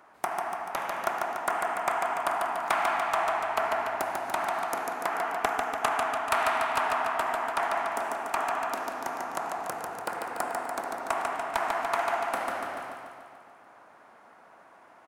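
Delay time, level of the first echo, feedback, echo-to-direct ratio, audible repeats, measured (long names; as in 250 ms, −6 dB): 145 ms, −4.0 dB, 60%, −2.0 dB, 7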